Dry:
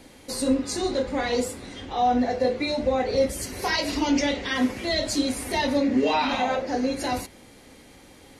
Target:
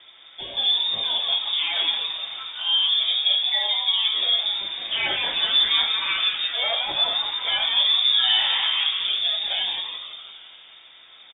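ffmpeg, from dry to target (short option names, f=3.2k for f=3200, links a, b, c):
-filter_complex "[0:a]asplit=2[a][b];[b]adelay=14,volume=-11dB[c];[a][c]amix=inputs=2:normalize=0,asetrate=32667,aresample=44100,asplit=9[d][e][f][g][h][i][j][k][l];[e]adelay=169,afreqshift=-150,volume=-5dB[m];[f]adelay=338,afreqshift=-300,volume=-9.6dB[n];[g]adelay=507,afreqshift=-450,volume=-14.2dB[o];[h]adelay=676,afreqshift=-600,volume=-18.7dB[p];[i]adelay=845,afreqshift=-750,volume=-23.3dB[q];[j]adelay=1014,afreqshift=-900,volume=-27.9dB[r];[k]adelay=1183,afreqshift=-1050,volume=-32.5dB[s];[l]adelay=1352,afreqshift=-1200,volume=-37.1dB[t];[d][m][n][o][p][q][r][s][t]amix=inputs=9:normalize=0,lowpass=f=3.1k:t=q:w=0.5098,lowpass=f=3.1k:t=q:w=0.6013,lowpass=f=3.1k:t=q:w=0.9,lowpass=f=3.1k:t=q:w=2.563,afreqshift=-3700"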